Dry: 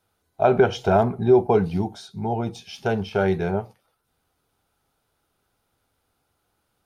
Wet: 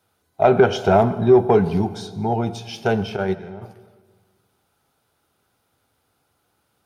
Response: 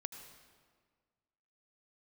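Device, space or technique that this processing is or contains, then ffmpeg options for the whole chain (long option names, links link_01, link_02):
saturated reverb return: -filter_complex "[0:a]highpass=73,asplit=3[link_01][link_02][link_03];[link_01]afade=type=out:start_time=3.15:duration=0.02[link_04];[link_02]agate=range=-18dB:threshold=-18dB:ratio=16:detection=peak,afade=type=in:start_time=3.15:duration=0.02,afade=type=out:start_time=3.61:duration=0.02[link_05];[link_03]afade=type=in:start_time=3.61:duration=0.02[link_06];[link_04][link_05][link_06]amix=inputs=3:normalize=0,asplit=2[link_07][link_08];[1:a]atrim=start_sample=2205[link_09];[link_08][link_09]afir=irnorm=-1:irlink=0,asoftclip=type=tanh:threshold=-16.5dB,volume=-1dB[link_10];[link_07][link_10]amix=inputs=2:normalize=0"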